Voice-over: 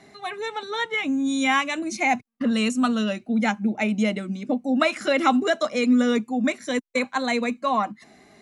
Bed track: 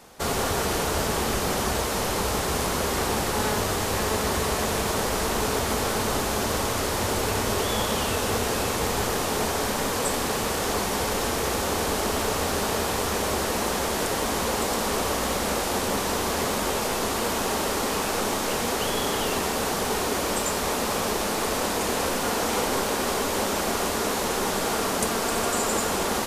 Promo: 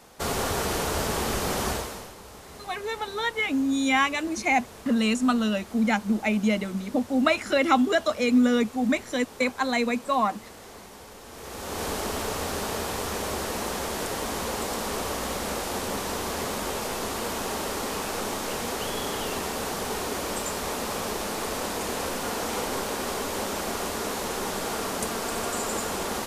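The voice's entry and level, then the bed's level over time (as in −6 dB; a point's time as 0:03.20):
2.45 s, −1.0 dB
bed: 0:01.71 −2 dB
0:02.16 −19.5 dB
0:11.24 −19.5 dB
0:11.84 −4.5 dB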